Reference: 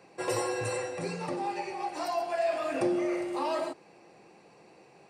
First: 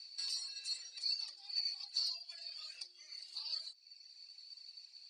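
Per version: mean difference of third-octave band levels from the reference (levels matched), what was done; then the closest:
17.0 dB: downward compressor 4 to 1, threshold −38 dBFS, peak gain reduction 12 dB
four-pole ladder band-pass 4,600 Hz, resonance 90%
reverb reduction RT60 1.3 s
level +15 dB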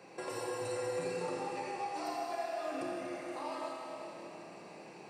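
6.5 dB: downward compressor 5 to 1, threshold −42 dBFS, peak gain reduction 16 dB
high-pass filter 110 Hz
four-comb reverb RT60 3.5 s, combs from 26 ms, DRR −2.5 dB
level +1 dB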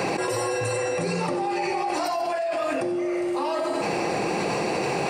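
8.5 dB: reverb whose tail is shaped and stops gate 110 ms rising, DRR 10.5 dB
envelope flattener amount 100%
level −2.5 dB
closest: second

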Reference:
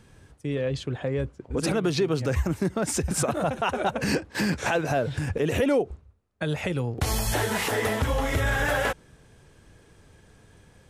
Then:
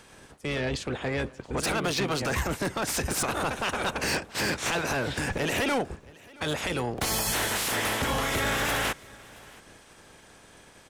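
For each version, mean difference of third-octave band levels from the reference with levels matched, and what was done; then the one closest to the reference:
7.5 dB: ceiling on every frequency bin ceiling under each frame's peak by 18 dB
soft clipping −23.5 dBFS, distortion −11 dB
repeating echo 674 ms, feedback 17%, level −23.5 dB
level +1 dB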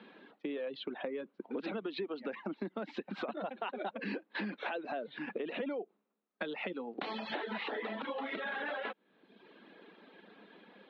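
10.5 dB: Chebyshev band-pass filter 200–4,000 Hz, order 5
reverb reduction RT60 0.78 s
downward compressor 6 to 1, threshold −41 dBFS, peak gain reduction 19 dB
level +4 dB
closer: first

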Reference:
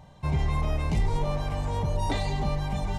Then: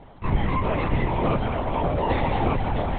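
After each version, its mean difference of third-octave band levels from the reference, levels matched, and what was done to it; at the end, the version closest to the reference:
8.0 dB: stylus tracing distortion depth 0.27 ms
band-pass filter 120–3,000 Hz
on a send: delay that swaps between a low-pass and a high-pass 107 ms, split 830 Hz, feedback 81%, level −6 dB
on the sum: linear-prediction vocoder at 8 kHz whisper
level +7 dB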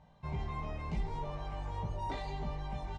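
3.5 dB: parametric band 1,200 Hz +2.5 dB 1.8 octaves
flanger 0.82 Hz, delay 4.4 ms, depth 1.7 ms, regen −69%
high-frequency loss of the air 82 metres
double-tracking delay 18 ms −5 dB
level −7.5 dB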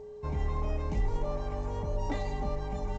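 4.5 dB: parametric band 3,800 Hz −8.5 dB 1.2 octaves
comb filter 3.6 ms, depth 49%
steady tone 420 Hz −36 dBFS
level −6 dB
G.722 64 kbit/s 16,000 Hz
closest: second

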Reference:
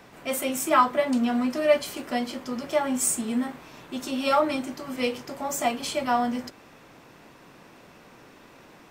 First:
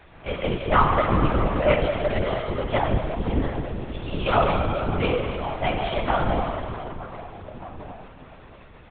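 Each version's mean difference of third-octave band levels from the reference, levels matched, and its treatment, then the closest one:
11.5 dB: slap from a distant wall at 260 metres, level −15 dB
dense smooth reverb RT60 3.6 s, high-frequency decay 0.75×, DRR −0.5 dB
linear-prediction vocoder at 8 kHz whisper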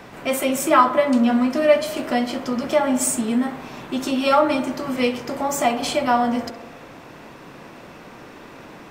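2.5 dB: high-shelf EQ 4,200 Hz −5.5 dB
in parallel at 0 dB: downward compressor, threshold −32 dBFS, peak gain reduction 16.5 dB
on the sum: tape delay 64 ms, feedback 77%, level −11 dB, low-pass 2,200 Hz
level +3.5 dB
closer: second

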